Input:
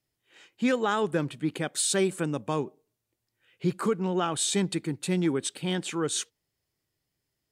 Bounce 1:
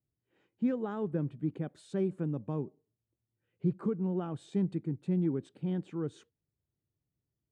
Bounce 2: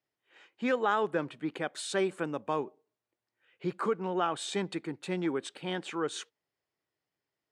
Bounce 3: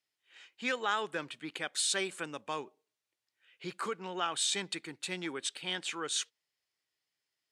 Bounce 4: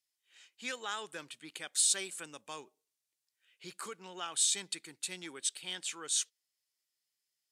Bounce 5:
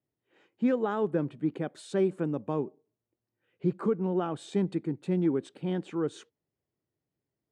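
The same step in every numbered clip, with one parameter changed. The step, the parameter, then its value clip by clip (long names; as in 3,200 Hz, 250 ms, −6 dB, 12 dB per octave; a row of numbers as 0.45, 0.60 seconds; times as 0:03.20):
resonant band-pass, frequency: 100, 960, 2,800, 7,200, 300 Hertz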